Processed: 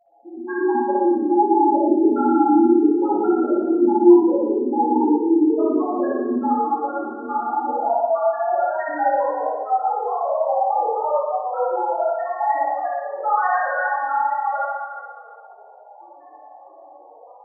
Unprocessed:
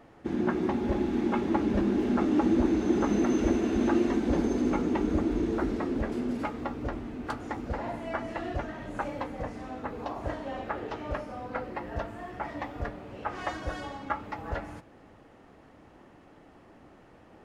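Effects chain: HPF 640 Hz 12 dB/oct; AGC gain up to 15 dB; in parallel at -1 dB: limiter -14.5 dBFS, peak gain reduction 11 dB; on the sum: loudest bins only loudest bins 2; darkening echo 0.172 s, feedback 44%, low-pass 4400 Hz, level -12 dB; spring tank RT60 1.4 s, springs 57 ms, chirp 65 ms, DRR -5.5 dB; detuned doubles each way 18 cents; gain +4 dB

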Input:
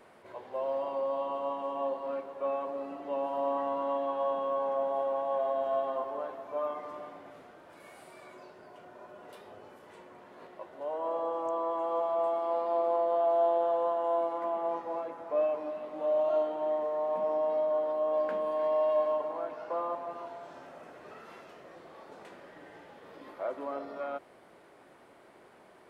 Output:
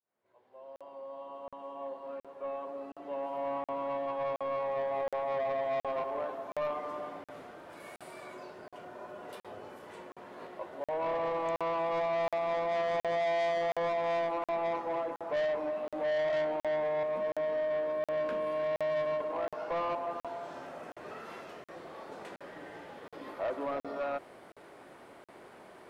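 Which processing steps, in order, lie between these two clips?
opening faded in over 7.33 s; 17.03–19.33 bell 800 Hz -14.5 dB 0.4 oct; soft clip -32.5 dBFS, distortion -9 dB; crackling interface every 0.72 s, samples 2048, zero, from 0.76; gain +4.5 dB

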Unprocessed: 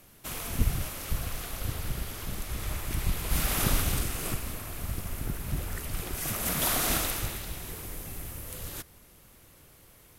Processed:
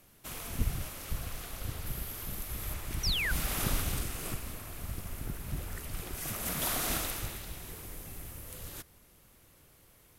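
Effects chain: 1.86–2.74 bell 13000 Hz +8.5 dB 0.61 oct; 3.03–3.32 painted sound fall 1400–6100 Hz -27 dBFS; gain -5 dB

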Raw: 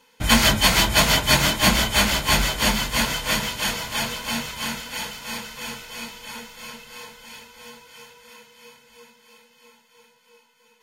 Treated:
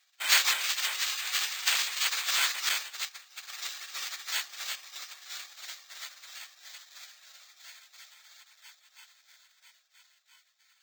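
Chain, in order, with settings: 0.54–2.02 self-modulated delay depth 0.41 ms; spectral gate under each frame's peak -15 dB weak; HPF 1500 Hz 12 dB/oct; careless resampling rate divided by 4×, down filtered, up hold; 2.69–3.5 expander -28 dBFS; gain +3 dB

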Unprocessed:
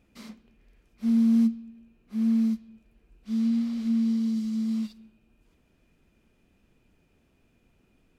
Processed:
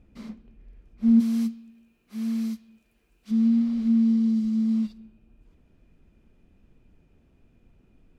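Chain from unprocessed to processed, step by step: tilt -2.5 dB/oct, from 1.19 s +2 dB/oct, from 3.3 s -2 dB/oct

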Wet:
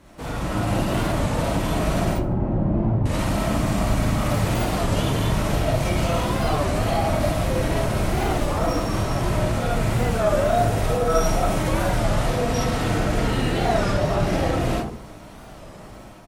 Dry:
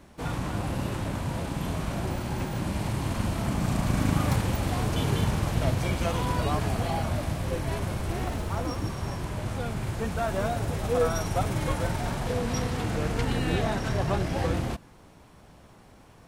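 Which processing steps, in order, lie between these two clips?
2.13–3.07 Bessel low-pass 510 Hz, order 2; limiter -25 dBFS, peak gain reduction 11.5 dB; AGC gain up to 6.5 dB; added harmonics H 4 -44 dB, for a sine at -18.5 dBFS; feedback echo 74 ms, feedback 38%, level -19 dB; reverb RT60 0.50 s, pre-delay 10 ms, DRR -4 dB; record warp 33 1/3 rpm, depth 160 cents

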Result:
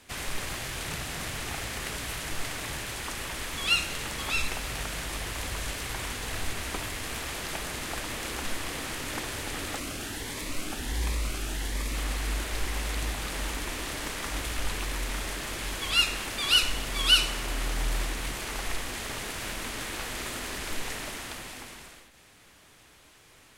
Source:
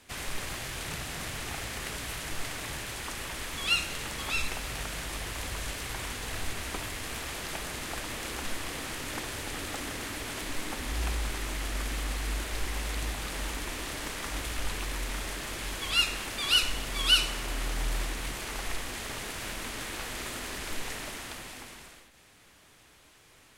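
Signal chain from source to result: 9.78–11.95 cascading phaser rising 1.4 Hz; gain +2 dB

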